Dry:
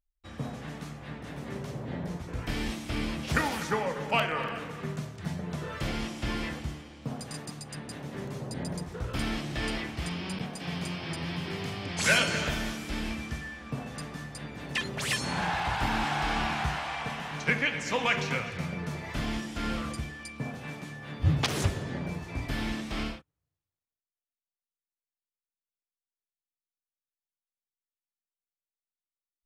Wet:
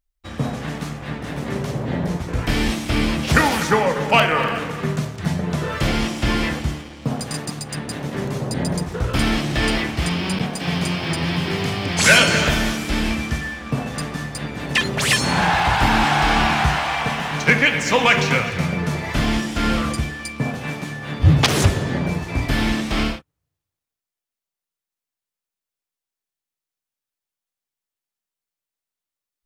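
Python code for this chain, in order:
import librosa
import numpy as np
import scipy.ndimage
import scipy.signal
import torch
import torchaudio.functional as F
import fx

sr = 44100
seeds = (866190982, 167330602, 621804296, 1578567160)

y = fx.leveller(x, sr, passes=1)
y = F.gain(torch.from_numpy(y), 8.5).numpy()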